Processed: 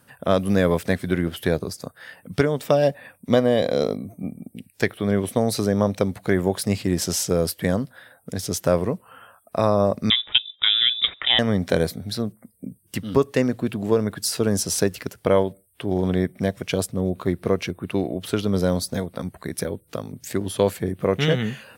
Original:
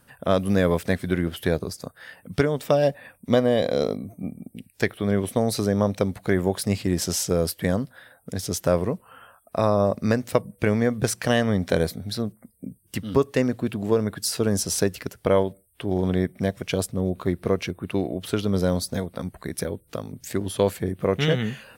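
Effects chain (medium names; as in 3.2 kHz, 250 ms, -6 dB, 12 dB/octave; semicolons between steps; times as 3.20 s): high-pass 75 Hz; 10.10–11.39 s: frequency inversion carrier 3.7 kHz; 14.10–15.18 s: crackle 140 per s -46 dBFS; trim +1.5 dB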